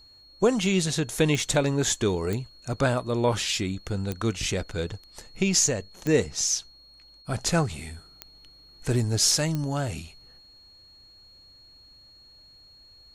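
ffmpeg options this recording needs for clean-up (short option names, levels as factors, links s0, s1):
-af "adeclick=t=4,bandreject=f=4300:w=30"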